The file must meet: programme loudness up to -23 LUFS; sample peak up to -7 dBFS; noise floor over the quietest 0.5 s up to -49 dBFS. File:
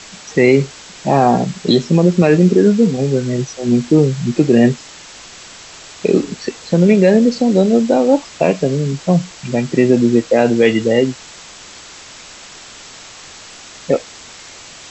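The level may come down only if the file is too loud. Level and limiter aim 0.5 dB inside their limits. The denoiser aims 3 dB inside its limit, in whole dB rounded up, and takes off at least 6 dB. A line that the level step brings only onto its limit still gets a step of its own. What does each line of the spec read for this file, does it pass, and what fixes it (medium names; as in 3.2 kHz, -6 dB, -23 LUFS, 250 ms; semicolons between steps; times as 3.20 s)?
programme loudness -14.5 LUFS: fail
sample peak -1.0 dBFS: fail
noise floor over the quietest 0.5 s -37 dBFS: fail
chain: noise reduction 6 dB, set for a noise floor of -37 dBFS; trim -9 dB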